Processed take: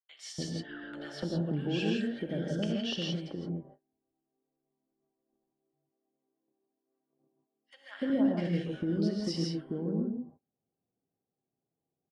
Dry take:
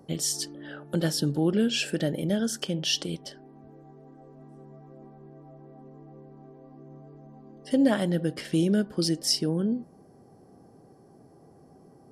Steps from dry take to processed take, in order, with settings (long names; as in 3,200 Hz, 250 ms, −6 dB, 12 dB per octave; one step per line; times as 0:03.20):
low-pass filter 2,800 Hz 12 dB per octave
noise gate −42 dBFS, range −37 dB
0:05.44–0:07.81: high-pass filter 210 Hz 12 dB per octave
downward compressor 2 to 1, threshold −38 dBFS, peak gain reduction 11.5 dB
multiband delay without the direct sound highs, lows 290 ms, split 1,200 Hz
reverb whose tail is shaped and stops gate 190 ms rising, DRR 0 dB